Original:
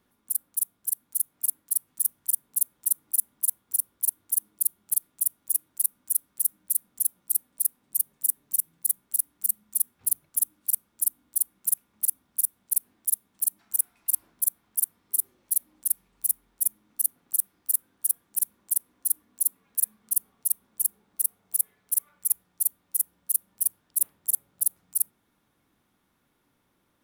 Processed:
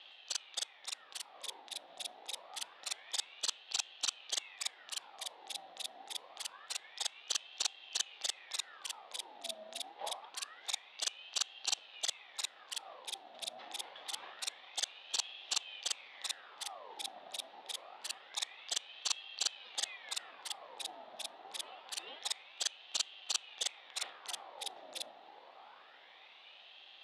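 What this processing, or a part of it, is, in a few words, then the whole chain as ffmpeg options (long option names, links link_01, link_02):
voice changer toy: -af "aeval=exprs='val(0)*sin(2*PI*1700*n/s+1700*0.75/0.26*sin(2*PI*0.26*n/s))':channel_layout=same,highpass=460,equalizer=frequency=550:width_type=q:width=4:gain=3,equalizer=frequency=780:width_type=q:width=4:gain=8,equalizer=frequency=1500:width_type=q:width=4:gain=-5,equalizer=frequency=2200:width_type=q:width=4:gain=-3,equalizer=frequency=3600:width_type=q:width=4:gain=8,lowpass=frequency=3900:width=0.5412,lowpass=frequency=3900:width=1.3066,volume=17dB"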